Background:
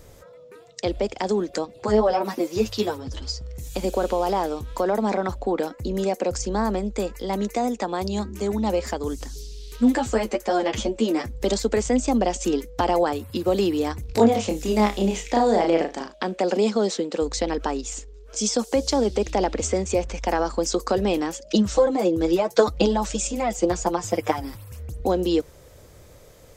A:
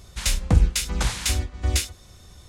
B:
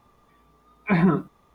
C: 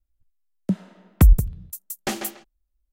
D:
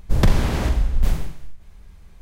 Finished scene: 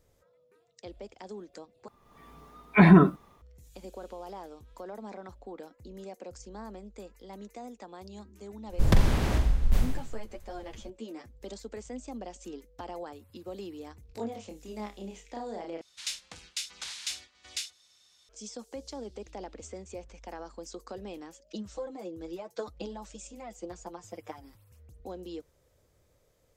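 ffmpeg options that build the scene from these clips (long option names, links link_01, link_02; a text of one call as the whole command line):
ffmpeg -i bed.wav -i cue0.wav -i cue1.wav -i cue2.wav -i cue3.wav -filter_complex "[0:a]volume=-19.5dB[link_01];[2:a]dynaudnorm=framelen=110:gausssize=5:maxgain=12.5dB[link_02];[1:a]bandpass=frequency=4300:width_type=q:width=1:csg=0[link_03];[link_01]asplit=3[link_04][link_05][link_06];[link_04]atrim=end=1.884[link_07];[link_02]atrim=end=1.54,asetpts=PTS-STARTPTS,volume=-5dB[link_08];[link_05]atrim=start=3.416:end=15.814[link_09];[link_03]atrim=end=2.48,asetpts=PTS-STARTPTS,volume=-6.5dB[link_10];[link_06]atrim=start=18.286[link_11];[4:a]atrim=end=2.21,asetpts=PTS-STARTPTS,volume=-5dB,afade=type=in:duration=0.004:curve=hsin,afade=type=out:start_time=2.206:duration=0.004:curve=hsin,adelay=8690[link_12];[link_07][link_08]acrossfade=duration=0.004:curve1=hsin:curve2=hsin[link_13];[link_13][link_09]acrossfade=duration=0.004:curve1=hsin:curve2=hsin[link_14];[link_14][link_10]acrossfade=duration=0.004:curve1=hsin:curve2=hsin[link_15];[link_15][link_11]acrossfade=duration=0.004:curve1=hsin:curve2=hsin[link_16];[link_16][link_12]amix=inputs=2:normalize=0" out.wav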